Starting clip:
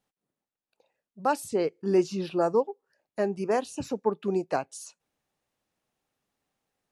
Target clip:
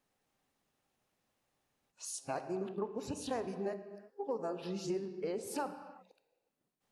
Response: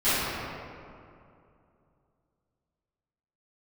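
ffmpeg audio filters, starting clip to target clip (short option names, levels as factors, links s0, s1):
-filter_complex "[0:a]areverse,acompressor=threshold=0.0158:ratio=6,asplit=2[s0][s1];[1:a]atrim=start_sample=2205,afade=t=out:st=0.42:d=0.01,atrim=end_sample=18963[s2];[s1][s2]afir=irnorm=-1:irlink=0,volume=0.0631[s3];[s0][s3]amix=inputs=2:normalize=0"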